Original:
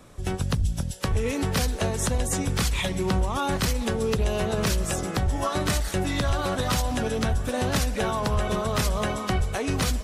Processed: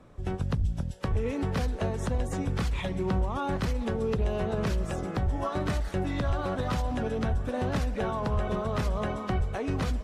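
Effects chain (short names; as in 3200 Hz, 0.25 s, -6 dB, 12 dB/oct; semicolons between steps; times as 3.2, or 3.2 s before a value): LPF 1400 Hz 6 dB/oct; gain -3 dB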